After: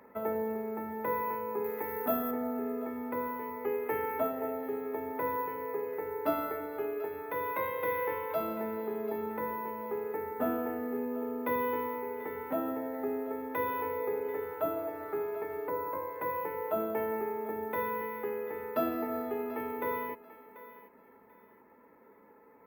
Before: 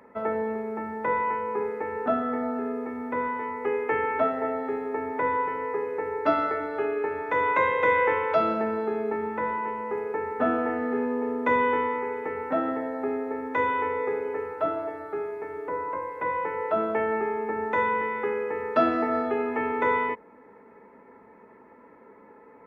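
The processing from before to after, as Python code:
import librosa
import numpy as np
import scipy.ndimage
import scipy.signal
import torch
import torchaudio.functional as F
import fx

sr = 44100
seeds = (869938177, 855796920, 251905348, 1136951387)

y = np.repeat(x[::3], 3)[:len(x)]
y = fx.dynamic_eq(y, sr, hz=1700.0, q=0.84, threshold_db=-40.0, ratio=4.0, max_db=-6)
y = fx.echo_thinned(y, sr, ms=738, feedback_pct=27, hz=510.0, wet_db=-15.0)
y = fx.rider(y, sr, range_db=10, speed_s=2.0)
y = fx.high_shelf(y, sr, hz=2900.0, db=11.0, at=(1.64, 2.31))
y = y * 10.0 ** (-6.0 / 20.0)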